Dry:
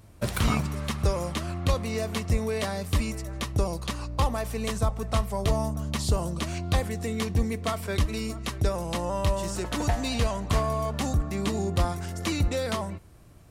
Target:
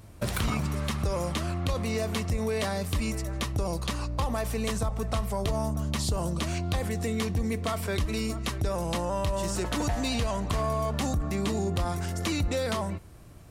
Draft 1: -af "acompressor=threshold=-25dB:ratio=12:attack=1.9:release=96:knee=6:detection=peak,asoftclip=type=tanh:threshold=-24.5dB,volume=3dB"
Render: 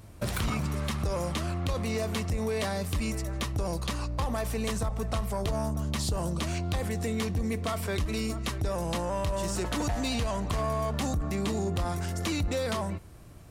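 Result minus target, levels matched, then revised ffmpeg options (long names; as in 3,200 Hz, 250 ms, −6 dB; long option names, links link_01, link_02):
soft clipping: distortion +17 dB
-af "acompressor=threshold=-25dB:ratio=12:attack=1.9:release=96:knee=6:detection=peak,asoftclip=type=tanh:threshold=-14.5dB,volume=3dB"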